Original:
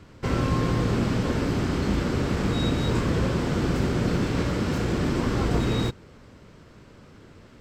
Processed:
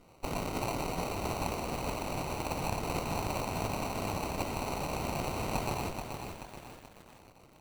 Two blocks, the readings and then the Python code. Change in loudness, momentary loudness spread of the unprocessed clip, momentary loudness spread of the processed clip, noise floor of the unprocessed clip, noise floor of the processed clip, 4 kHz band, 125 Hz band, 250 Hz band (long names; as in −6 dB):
−10.0 dB, 2 LU, 10 LU, −50 dBFS, −58 dBFS, −7.5 dB, −14.0 dB, −14.0 dB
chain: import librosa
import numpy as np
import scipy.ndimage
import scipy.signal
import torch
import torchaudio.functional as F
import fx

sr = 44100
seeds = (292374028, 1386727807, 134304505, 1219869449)

y = scipy.signal.sosfilt(scipy.signal.butter(4, 320.0, 'highpass', fs=sr, output='sos'), x)
y = fx.high_shelf(y, sr, hz=8200.0, db=6.0)
y = fx.echo_wet_highpass(y, sr, ms=470, feedback_pct=36, hz=3500.0, wet_db=-6.0)
y = fx.sample_hold(y, sr, seeds[0], rate_hz=1700.0, jitter_pct=0)
y = np.abs(y)
y = fx.cheby_harmonics(y, sr, harmonics=(8,), levels_db=(-32,), full_scale_db=-16.5)
y = fx.echo_crushed(y, sr, ms=431, feedback_pct=55, bits=8, wet_db=-6.0)